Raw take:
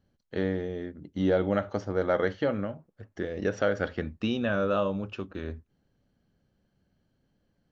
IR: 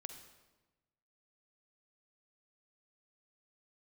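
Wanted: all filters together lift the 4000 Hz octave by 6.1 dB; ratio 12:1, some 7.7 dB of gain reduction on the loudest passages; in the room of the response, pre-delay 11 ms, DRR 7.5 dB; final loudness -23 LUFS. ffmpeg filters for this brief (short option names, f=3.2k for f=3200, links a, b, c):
-filter_complex "[0:a]equalizer=f=4k:t=o:g=8,acompressor=threshold=-28dB:ratio=12,asplit=2[a][b];[1:a]atrim=start_sample=2205,adelay=11[c];[b][c]afir=irnorm=-1:irlink=0,volume=-3.5dB[d];[a][d]amix=inputs=2:normalize=0,volume=11dB"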